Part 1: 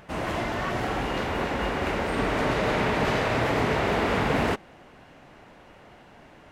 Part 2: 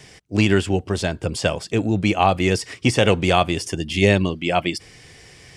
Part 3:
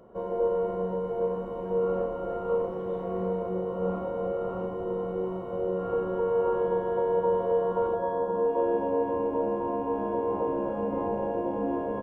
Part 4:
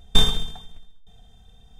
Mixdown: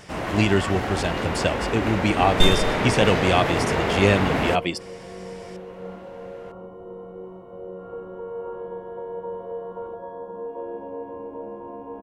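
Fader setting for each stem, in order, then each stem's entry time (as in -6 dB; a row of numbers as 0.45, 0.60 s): +1.0, -3.0, -7.5, -2.5 dB; 0.00, 0.00, 2.00, 2.25 s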